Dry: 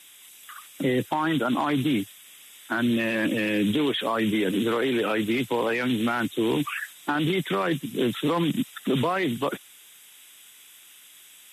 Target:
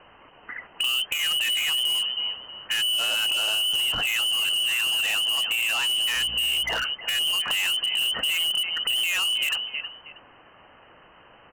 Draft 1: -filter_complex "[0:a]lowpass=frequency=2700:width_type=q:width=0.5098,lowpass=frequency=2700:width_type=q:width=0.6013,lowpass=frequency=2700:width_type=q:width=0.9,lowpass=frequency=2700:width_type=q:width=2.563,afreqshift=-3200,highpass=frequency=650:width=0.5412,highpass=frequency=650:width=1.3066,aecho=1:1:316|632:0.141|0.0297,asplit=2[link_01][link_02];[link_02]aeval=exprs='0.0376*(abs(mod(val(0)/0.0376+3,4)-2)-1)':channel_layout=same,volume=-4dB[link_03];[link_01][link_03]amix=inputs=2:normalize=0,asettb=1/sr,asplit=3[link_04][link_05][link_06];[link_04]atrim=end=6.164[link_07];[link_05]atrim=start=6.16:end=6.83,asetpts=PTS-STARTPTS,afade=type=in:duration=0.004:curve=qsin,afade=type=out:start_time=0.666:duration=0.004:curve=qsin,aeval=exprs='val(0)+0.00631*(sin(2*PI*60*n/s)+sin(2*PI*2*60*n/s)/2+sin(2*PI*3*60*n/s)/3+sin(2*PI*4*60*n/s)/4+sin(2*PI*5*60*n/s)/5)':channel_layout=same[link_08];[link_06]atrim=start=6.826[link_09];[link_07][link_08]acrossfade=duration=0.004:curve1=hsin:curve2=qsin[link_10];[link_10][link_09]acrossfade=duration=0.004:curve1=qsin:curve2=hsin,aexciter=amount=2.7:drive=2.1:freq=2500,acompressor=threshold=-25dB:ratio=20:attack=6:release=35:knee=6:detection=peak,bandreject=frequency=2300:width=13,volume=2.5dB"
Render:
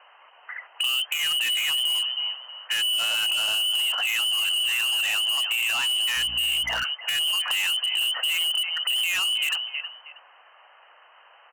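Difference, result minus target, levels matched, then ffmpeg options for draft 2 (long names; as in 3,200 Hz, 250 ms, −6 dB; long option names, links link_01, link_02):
500 Hz band −4.5 dB
-filter_complex "[0:a]lowpass=frequency=2700:width_type=q:width=0.5098,lowpass=frequency=2700:width_type=q:width=0.6013,lowpass=frequency=2700:width_type=q:width=0.9,lowpass=frequency=2700:width_type=q:width=2.563,afreqshift=-3200,aecho=1:1:316|632:0.141|0.0297,asplit=2[link_01][link_02];[link_02]aeval=exprs='0.0376*(abs(mod(val(0)/0.0376+3,4)-2)-1)':channel_layout=same,volume=-4dB[link_03];[link_01][link_03]amix=inputs=2:normalize=0,asettb=1/sr,asplit=3[link_04][link_05][link_06];[link_04]atrim=end=6.164[link_07];[link_05]atrim=start=6.16:end=6.83,asetpts=PTS-STARTPTS,afade=type=in:duration=0.004:curve=qsin,afade=type=out:start_time=0.666:duration=0.004:curve=qsin,aeval=exprs='val(0)+0.00631*(sin(2*PI*60*n/s)+sin(2*PI*2*60*n/s)/2+sin(2*PI*3*60*n/s)/3+sin(2*PI*4*60*n/s)/4+sin(2*PI*5*60*n/s)/5)':channel_layout=same[link_08];[link_06]atrim=start=6.826[link_09];[link_07][link_08]acrossfade=duration=0.004:curve1=hsin:curve2=qsin[link_10];[link_10][link_09]acrossfade=duration=0.004:curve1=qsin:curve2=hsin,aexciter=amount=2.7:drive=2.1:freq=2500,acompressor=threshold=-25dB:ratio=20:attack=6:release=35:knee=6:detection=peak,bandreject=frequency=2300:width=13,volume=2.5dB"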